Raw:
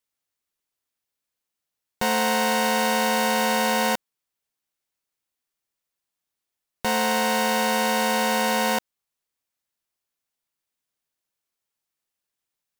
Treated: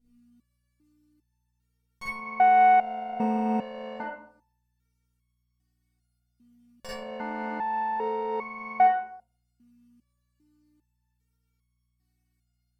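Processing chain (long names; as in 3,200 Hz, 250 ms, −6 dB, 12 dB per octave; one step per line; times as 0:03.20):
mains hum 60 Hz, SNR 34 dB
treble cut that deepens with the level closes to 1,200 Hz, closed at −20.5 dBFS
convolution reverb RT60 0.55 s, pre-delay 40 ms, DRR −10.5 dB
boost into a limiter +9.5 dB
step-sequenced resonator 2.5 Hz 240–1,100 Hz
level −1 dB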